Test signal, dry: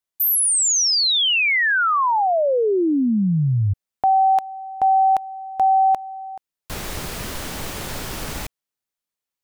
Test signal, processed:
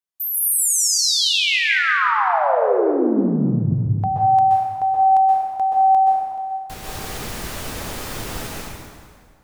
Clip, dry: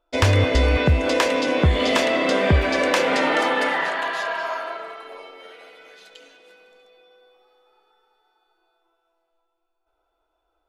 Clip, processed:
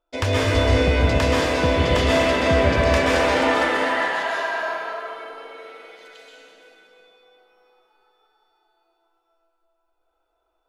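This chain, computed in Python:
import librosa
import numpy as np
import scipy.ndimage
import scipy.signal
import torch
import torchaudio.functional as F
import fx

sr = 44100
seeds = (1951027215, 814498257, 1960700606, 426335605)

y = fx.rev_plate(x, sr, seeds[0], rt60_s=2.0, hf_ratio=0.75, predelay_ms=115, drr_db=-5.5)
y = F.gain(torch.from_numpy(y), -6.0).numpy()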